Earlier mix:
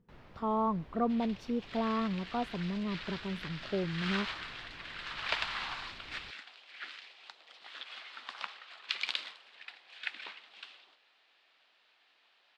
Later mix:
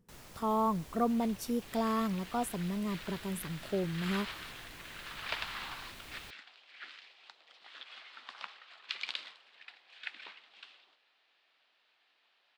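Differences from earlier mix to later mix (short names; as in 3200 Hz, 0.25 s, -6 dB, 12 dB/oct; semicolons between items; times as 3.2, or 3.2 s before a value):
speech: remove air absorption 220 m; first sound: remove air absorption 350 m; second sound -4.0 dB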